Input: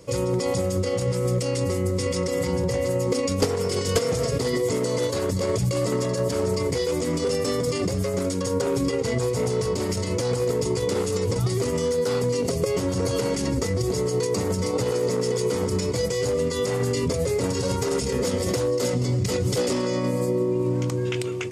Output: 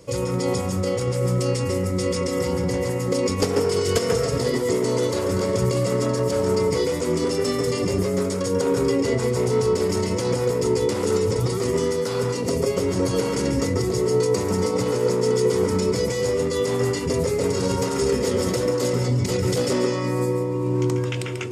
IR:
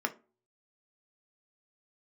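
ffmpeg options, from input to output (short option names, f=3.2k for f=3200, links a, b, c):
-filter_complex "[0:a]asplit=2[a][b];[1:a]atrim=start_sample=2205,adelay=140[c];[b][c]afir=irnorm=-1:irlink=0,volume=-7dB[d];[a][d]amix=inputs=2:normalize=0"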